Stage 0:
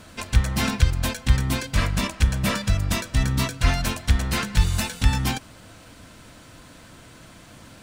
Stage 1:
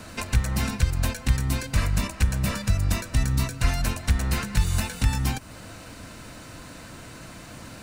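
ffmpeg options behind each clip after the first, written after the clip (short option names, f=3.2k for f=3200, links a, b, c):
-filter_complex "[0:a]bandreject=f=3.3k:w=9.8,acrossover=split=110|3400|7300[a][b][c][d];[a]acompressor=threshold=-24dB:ratio=4[e];[b]acompressor=threshold=-34dB:ratio=4[f];[c]acompressor=threshold=-47dB:ratio=4[g];[d]acompressor=threshold=-41dB:ratio=4[h];[e][f][g][h]amix=inputs=4:normalize=0,volume=4.5dB"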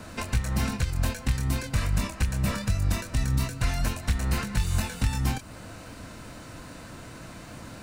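-filter_complex "[0:a]acrossover=split=1800[a][b];[a]alimiter=limit=-16dB:level=0:latency=1:release=203[c];[b]flanger=delay=22.5:depth=4.8:speed=2.5[d];[c][d]amix=inputs=2:normalize=0"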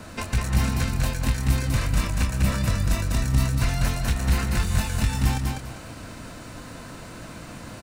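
-af "aecho=1:1:199|398|597|796:0.708|0.177|0.0442|0.0111,volume=1.5dB"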